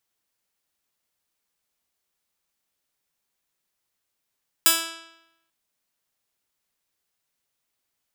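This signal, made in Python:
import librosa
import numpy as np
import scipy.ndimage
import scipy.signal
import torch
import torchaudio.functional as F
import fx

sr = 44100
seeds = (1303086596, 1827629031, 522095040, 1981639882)

y = fx.pluck(sr, length_s=0.84, note=64, decay_s=0.9, pick=0.16, brightness='bright')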